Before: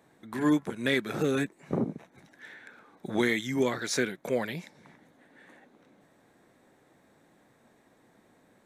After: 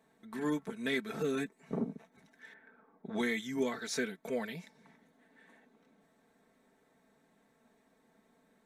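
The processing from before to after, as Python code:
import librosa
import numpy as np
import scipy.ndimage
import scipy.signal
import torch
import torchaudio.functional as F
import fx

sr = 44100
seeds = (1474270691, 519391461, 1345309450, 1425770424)

y = x + 0.7 * np.pad(x, (int(4.5 * sr / 1000.0), 0))[:len(x)]
y = fx.env_lowpass(y, sr, base_hz=1100.0, full_db=-24.0, at=(2.53, 3.31), fade=0.02)
y = F.gain(torch.from_numpy(y), -8.5).numpy()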